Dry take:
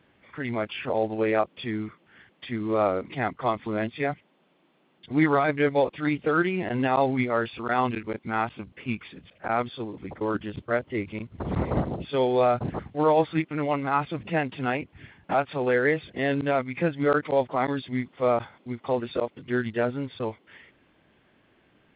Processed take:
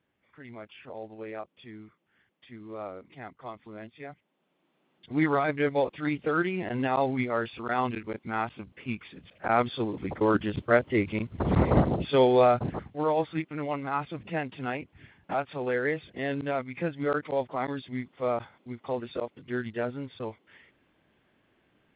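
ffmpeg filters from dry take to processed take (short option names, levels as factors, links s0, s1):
-af "volume=1.58,afade=t=in:st=4.12:d=1.14:silence=0.266073,afade=t=in:st=9.09:d=0.75:silence=0.421697,afade=t=out:st=12.06:d=0.89:silence=0.334965"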